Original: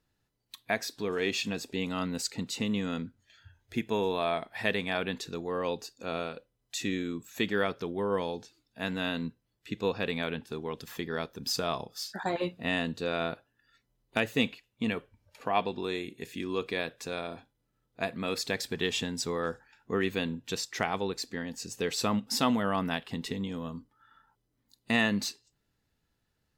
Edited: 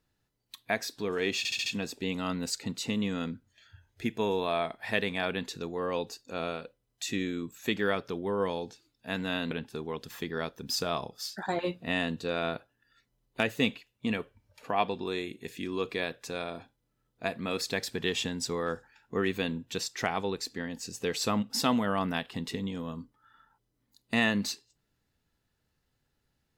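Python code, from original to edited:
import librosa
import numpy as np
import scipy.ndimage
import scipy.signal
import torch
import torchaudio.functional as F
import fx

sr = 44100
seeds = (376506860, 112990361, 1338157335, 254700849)

y = fx.edit(x, sr, fx.stutter(start_s=1.38, slice_s=0.07, count=5),
    fx.cut(start_s=9.23, length_s=1.05), tone=tone)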